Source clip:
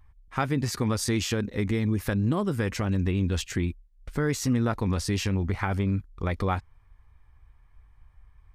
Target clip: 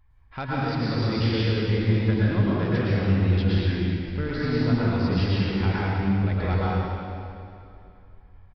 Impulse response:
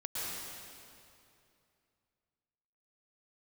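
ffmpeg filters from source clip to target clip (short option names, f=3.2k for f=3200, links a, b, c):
-filter_complex "[0:a]bandreject=f=1.2k:w=12,aresample=11025,volume=20dB,asoftclip=hard,volume=-20dB,aresample=44100[a];[1:a]atrim=start_sample=2205[b];[a][b]afir=irnorm=-1:irlink=0"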